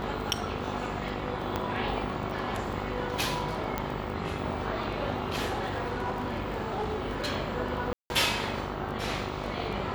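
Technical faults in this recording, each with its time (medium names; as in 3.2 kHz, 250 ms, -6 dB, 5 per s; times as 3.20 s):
buzz 50 Hz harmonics 28 -37 dBFS
crackle 10 per s -35 dBFS
1.56 s: pop -15 dBFS
3.78 s: pop -15 dBFS
5.45–7.30 s: clipped -26.5 dBFS
7.93–8.10 s: dropout 171 ms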